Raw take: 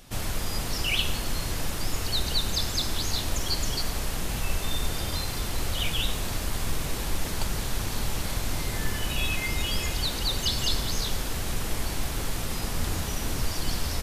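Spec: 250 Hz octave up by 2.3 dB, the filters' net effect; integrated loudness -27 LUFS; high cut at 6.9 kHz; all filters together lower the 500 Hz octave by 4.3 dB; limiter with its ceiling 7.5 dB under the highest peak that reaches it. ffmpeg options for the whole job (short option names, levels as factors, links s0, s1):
-af "lowpass=6900,equalizer=f=250:t=o:g=5,equalizer=f=500:t=o:g=-7.5,volume=1.68,alimiter=limit=0.188:level=0:latency=1"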